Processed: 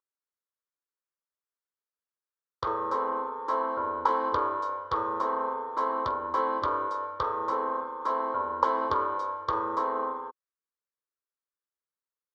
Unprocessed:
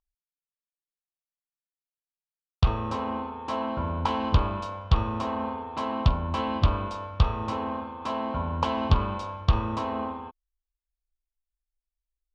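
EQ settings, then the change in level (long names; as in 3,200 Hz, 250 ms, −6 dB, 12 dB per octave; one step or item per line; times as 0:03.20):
high-pass filter 480 Hz 12 dB per octave
low-pass filter 1,300 Hz 6 dB per octave
phaser with its sweep stopped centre 720 Hz, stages 6
+8.0 dB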